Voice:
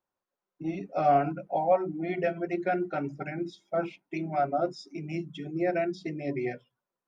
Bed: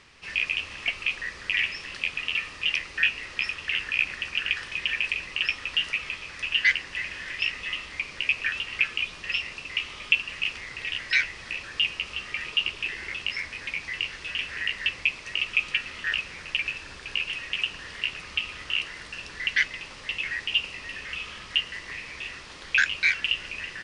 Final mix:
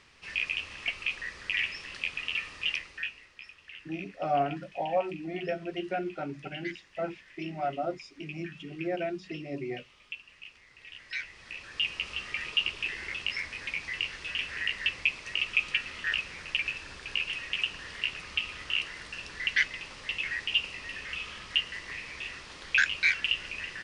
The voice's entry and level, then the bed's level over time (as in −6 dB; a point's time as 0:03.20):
3.25 s, −4.5 dB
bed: 0:02.69 −4.5 dB
0:03.34 −19.5 dB
0:10.66 −19.5 dB
0:12.03 −2.5 dB